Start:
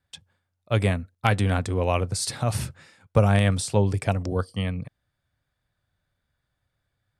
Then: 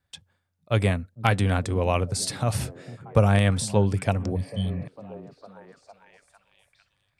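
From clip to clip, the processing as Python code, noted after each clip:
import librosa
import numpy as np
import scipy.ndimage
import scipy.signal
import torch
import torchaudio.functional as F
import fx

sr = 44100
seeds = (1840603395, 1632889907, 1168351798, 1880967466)

y = fx.spec_repair(x, sr, seeds[0], start_s=4.38, length_s=0.44, low_hz=260.0, high_hz=3000.0, source='after')
y = fx.echo_stepped(y, sr, ms=452, hz=180.0, octaves=0.7, feedback_pct=70, wet_db=-11.5)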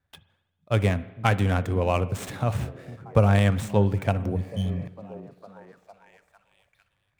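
y = scipy.ndimage.median_filter(x, 9, mode='constant')
y = fx.rev_spring(y, sr, rt60_s=1.0, pass_ms=(39, 54), chirp_ms=45, drr_db=15.5)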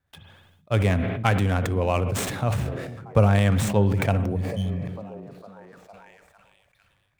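y = fx.sustainer(x, sr, db_per_s=34.0)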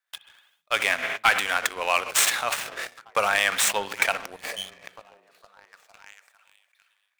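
y = scipy.signal.sosfilt(scipy.signal.butter(2, 1400.0, 'highpass', fs=sr, output='sos'), x)
y = fx.leveller(y, sr, passes=2)
y = y * librosa.db_to_amplitude(4.0)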